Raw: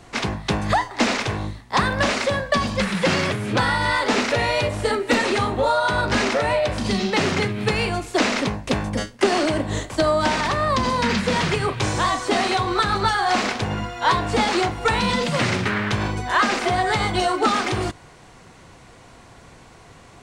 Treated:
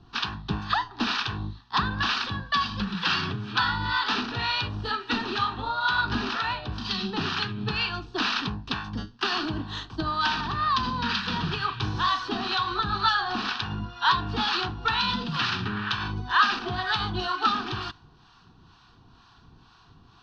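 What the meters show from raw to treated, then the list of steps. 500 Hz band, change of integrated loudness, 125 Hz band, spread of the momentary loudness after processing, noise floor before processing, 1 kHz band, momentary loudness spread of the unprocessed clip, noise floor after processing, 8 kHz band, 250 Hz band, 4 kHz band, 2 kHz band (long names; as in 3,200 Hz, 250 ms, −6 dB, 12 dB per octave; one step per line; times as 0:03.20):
−17.0 dB, −5.5 dB, −7.0 dB, 7 LU, −47 dBFS, −5.0 dB, 5 LU, −56 dBFS, −16.0 dB, −8.5 dB, −1.5 dB, −5.0 dB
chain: Butterworth low-pass 7,400 Hz 72 dB per octave
parametric band 4,300 Hz +2.5 dB
two-band tremolo in antiphase 2.1 Hz, depth 70%, crossover 740 Hz
phaser with its sweep stopped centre 2,100 Hz, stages 6
dynamic equaliser 2,100 Hz, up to +7 dB, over −41 dBFS, Q 0.8
level −3 dB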